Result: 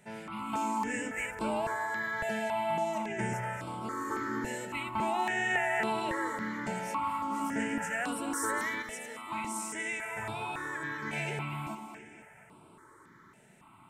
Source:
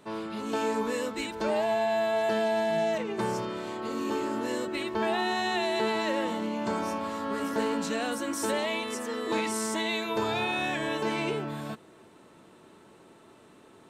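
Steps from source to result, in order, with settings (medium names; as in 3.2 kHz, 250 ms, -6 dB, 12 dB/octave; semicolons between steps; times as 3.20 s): two-band feedback delay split 300 Hz, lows 114 ms, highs 239 ms, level -8 dB; 8.82–11.13 s: flange 1.4 Hz, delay 8.6 ms, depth 5.5 ms, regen +88%; graphic EQ 125/500/1000/2000/4000/8000 Hz +4/-9/+6/+9/-12/+5 dB; stepped phaser 3.6 Hz 300–6400 Hz; trim -1.5 dB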